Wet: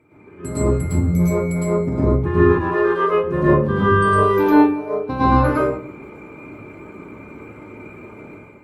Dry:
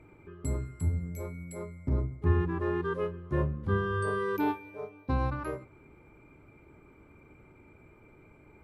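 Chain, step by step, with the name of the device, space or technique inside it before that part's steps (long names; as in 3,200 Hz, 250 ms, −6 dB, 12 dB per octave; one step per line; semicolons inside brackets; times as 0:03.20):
0:02.40–0:03.13: high-pass filter 450 Hz 12 dB per octave
far-field microphone of a smart speaker (convolution reverb RT60 0.50 s, pre-delay 103 ms, DRR −8.5 dB; high-pass filter 140 Hz 12 dB per octave; automatic gain control gain up to 10 dB; Opus 24 kbit/s 48,000 Hz)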